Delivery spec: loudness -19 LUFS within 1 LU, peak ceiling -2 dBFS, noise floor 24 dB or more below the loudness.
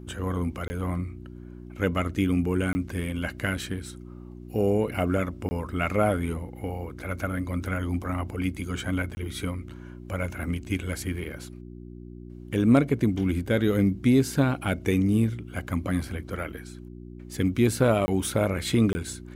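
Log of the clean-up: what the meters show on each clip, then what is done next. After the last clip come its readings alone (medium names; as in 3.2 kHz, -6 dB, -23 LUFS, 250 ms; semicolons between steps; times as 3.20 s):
dropouts 6; longest dropout 20 ms; hum 60 Hz; highest harmonic 360 Hz; hum level -39 dBFS; loudness -27.0 LUFS; peak level -8.5 dBFS; loudness target -19.0 LUFS
-> interpolate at 0.68/2.73/5.49/9.15/18.06/18.93 s, 20 ms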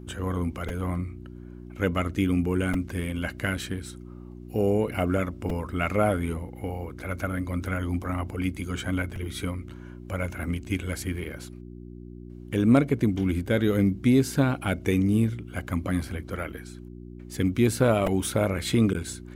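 dropouts 0; hum 60 Hz; highest harmonic 360 Hz; hum level -39 dBFS
-> de-hum 60 Hz, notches 6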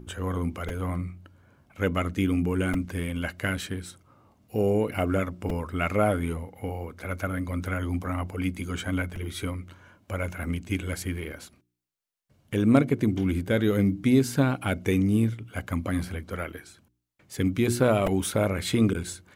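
hum not found; loudness -27.5 LUFS; peak level -6.5 dBFS; loudness target -19.0 LUFS
-> trim +8.5 dB; peak limiter -2 dBFS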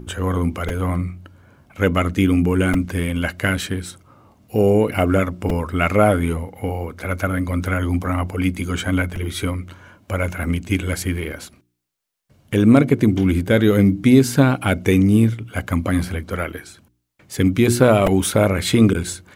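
loudness -19.0 LUFS; peak level -2.0 dBFS; noise floor -60 dBFS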